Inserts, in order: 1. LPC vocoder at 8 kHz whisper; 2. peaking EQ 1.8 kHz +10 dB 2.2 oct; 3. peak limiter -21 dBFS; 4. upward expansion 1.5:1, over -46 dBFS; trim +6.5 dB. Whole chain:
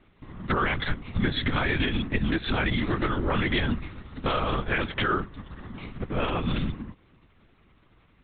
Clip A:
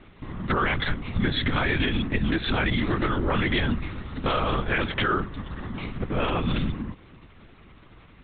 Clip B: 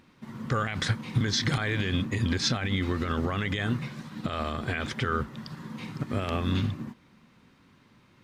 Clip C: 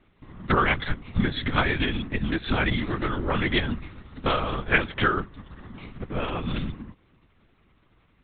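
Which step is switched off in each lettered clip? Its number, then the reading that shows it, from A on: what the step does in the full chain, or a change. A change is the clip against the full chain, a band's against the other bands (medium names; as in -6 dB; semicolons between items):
4, momentary loudness spread change -4 LU; 1, 125 Hz band +5.0 dB; 3, crest factor change +8.0 dB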